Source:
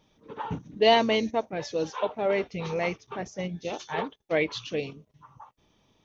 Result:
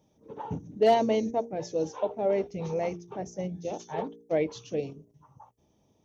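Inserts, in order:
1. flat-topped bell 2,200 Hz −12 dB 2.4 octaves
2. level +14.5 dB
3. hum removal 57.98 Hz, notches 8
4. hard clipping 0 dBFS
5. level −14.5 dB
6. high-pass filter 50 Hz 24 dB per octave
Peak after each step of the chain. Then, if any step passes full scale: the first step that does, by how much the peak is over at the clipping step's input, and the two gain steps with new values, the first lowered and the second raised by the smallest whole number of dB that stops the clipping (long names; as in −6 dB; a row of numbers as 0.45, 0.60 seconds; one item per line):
−10.5, +4.0, +4.0, 0.0, −14.5, −13.0 dBFS
step 2, 4.0 dB
step 2 +10.5 dB, step 5 −10.5 dB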